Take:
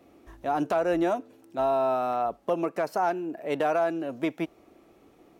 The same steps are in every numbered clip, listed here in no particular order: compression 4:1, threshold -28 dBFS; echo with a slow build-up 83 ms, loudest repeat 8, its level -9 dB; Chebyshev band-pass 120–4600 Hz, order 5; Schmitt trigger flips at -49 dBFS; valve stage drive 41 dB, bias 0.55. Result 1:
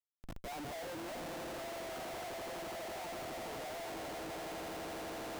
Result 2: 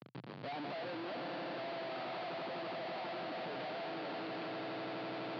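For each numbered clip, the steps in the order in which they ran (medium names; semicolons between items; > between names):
echo with a slow build-up > compression > valve stage > Chebyshev band-pass > Schmitt trigger; compression > echo with a slow build-up > Schmitt trigger > valve stage > Chebyshev band-pass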